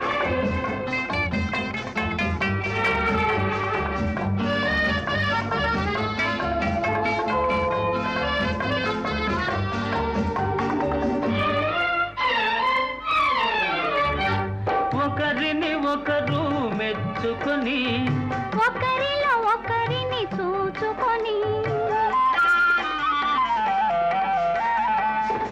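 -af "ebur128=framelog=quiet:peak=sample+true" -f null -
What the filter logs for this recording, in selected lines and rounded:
Integrated loudness:
  I:         -23.1 LUFS
  Threshold: -33.1 LUFS
Loudness range:
  LRA:         2.8 LU
  Threshold: -43.1 LUFS
  LRA low:   -24.1 LUFS
  LRA high:  -21.3 LUFS
Sample peak:
  Peak:      -14.3 dBFS
True peak:
  Peak:      -14.2 dBFS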